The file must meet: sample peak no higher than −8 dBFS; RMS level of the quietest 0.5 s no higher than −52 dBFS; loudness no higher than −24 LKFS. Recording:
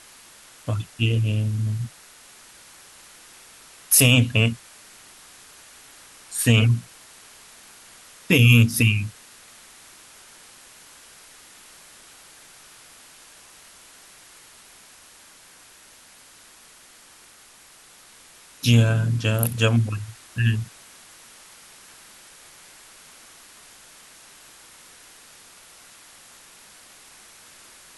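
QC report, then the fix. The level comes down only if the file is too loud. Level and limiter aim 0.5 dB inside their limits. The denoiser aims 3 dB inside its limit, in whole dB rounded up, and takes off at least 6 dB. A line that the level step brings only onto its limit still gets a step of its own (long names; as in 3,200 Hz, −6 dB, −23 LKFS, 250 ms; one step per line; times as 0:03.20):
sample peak −4.5 dBFS: out of spec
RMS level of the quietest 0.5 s −50 dBFS: out of spec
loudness −20.0 LKFS: out of spec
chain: level −4.5 dB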